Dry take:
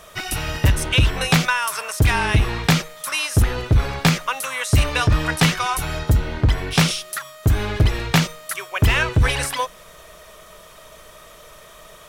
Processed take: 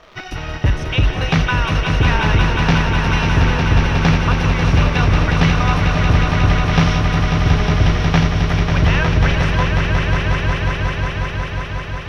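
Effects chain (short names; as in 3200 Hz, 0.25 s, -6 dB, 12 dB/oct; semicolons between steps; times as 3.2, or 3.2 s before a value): bell 5800 Hz +10.5 dB 0.27 oct; in parallel at -10.5 dB: bit-crush 4-bit; on the sum: crackle 500/s -24 dBFS; air absorption 280 m; on a send: swelling echo 0.181 s, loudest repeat 5, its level -6 dB; on the sum: gain -1.5 dB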